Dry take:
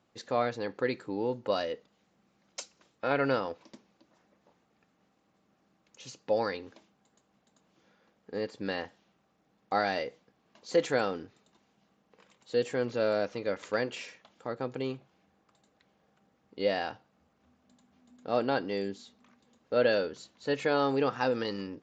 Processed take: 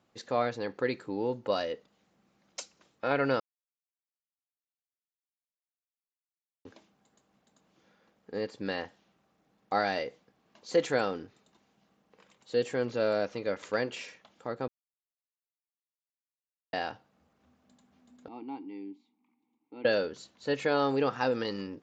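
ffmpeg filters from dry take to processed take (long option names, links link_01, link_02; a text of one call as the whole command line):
ffmpeg -i in.wav -filter_complex "[0:a]asettb=1/sr,asplit=3[link_01][link_02][link_03];[link_01]atrim=end=18.284[link_04];[link_02]atrim=start=18.28:end=19.85,asetpts=PTS-STARTPTS,afade=type=in:duration=0.004:curve=qsin,afade=type=out:start_time=1.566:duration=0.004:curve=qsin,asplit=3[link_05][link_06][link_07];[link_05]bandpass=frequency=300:width_type=q:width=8,volume=0dB[link_08];[link_06]bandpass=frequency=870:width_type=q:width=8,volume=-6dB[link_09];[link_07]bandpass=frequency=2240:width_type=q:width=8,volume=-9dB[link_10];[link_08][link_09][link_10]amix=inputs=3:normalize=0[link_11];[link_03]atrim=start=19.846[link_12];[link_04][link_11]acrossfade=duration=0.004:curve1=hsin:curve2=qsin[link_13];[link_13][link_12]acrossfade=duration=0.004:curve1=qsin:curve2=hsin,asplit=5[link_14][link_15][link_16][link_17][link_18];[link_14]atrim=end=3.4,asetpts=PTS-STARTPTS,afade=type=out:start_time=3.396:duration=0.004:curve=hsin[link_19];[link_15]atrim=start=3.4:end=6.65,asetpts=PTS-STARTPTS,volume=0[link_20];[link_16]atrim=start=6.65:end=14.68,asetpts=PTS-STARTPTS,afade=type=in:duration=0.004:curve=hsin,afade=type=out:start_time=8.026:duration=0.004:curve=hsin[link_21];[link_17]atrim=start=14.68:end=16.73,asetpts=PTS-STARTPTS,volume=0[link_22];[link_18]atrim=start=16.73,asetpts=PTS-STARTPTS,afade=type=in:duration=0.004:curve=hsin[link_23];[link_19][link_20][link_21][link_22][link_23]concat=n=5:v=0:a=1" out.wav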